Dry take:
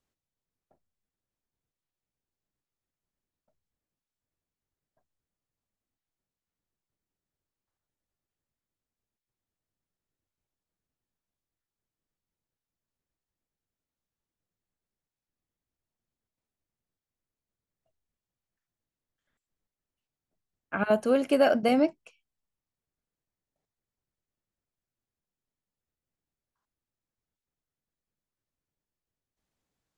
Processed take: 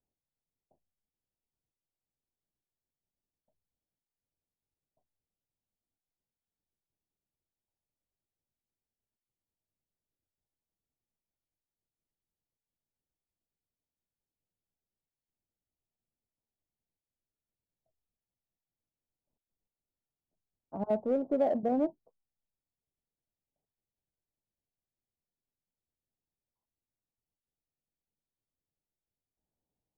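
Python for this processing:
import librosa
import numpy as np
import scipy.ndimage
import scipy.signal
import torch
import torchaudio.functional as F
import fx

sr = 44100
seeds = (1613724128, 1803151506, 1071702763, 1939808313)

p1 = scipy.signal.sosfilt(scipy.signal.butter(8, 940.0, 'lowpass', fs=sr, output='sos'), x)
p2 = np.clip(p1, -10.0 ** (-25.5 / 20.0), 10.0 ** (-25.5 / 20.0))
p3 = p1 + (p2 * librosa.db_to_amplitude(-9.5))
y = p3 * librosa.db_to_amplitude(-7.0)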